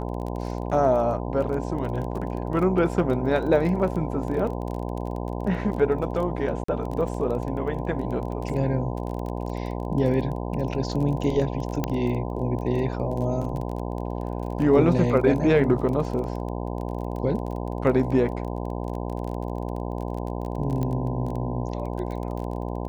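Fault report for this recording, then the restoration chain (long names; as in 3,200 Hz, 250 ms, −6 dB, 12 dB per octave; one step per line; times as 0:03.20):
mains buzz 60 Hz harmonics 17 −30 dBFS
surface crackle 24 per second −31 dBFS
0:06.64–0:06.68: drop-out 44 ms
0:11.84: click −11 dBFS
0:20.83: click −17 dBFS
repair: click removal
hum removal 60 Hz, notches 17
repair the gap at 0:06.64, 44 ms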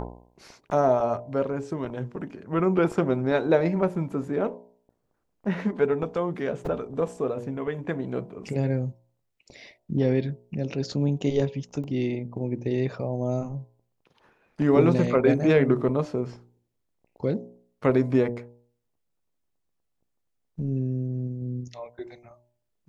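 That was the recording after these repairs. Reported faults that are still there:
0:11.84: click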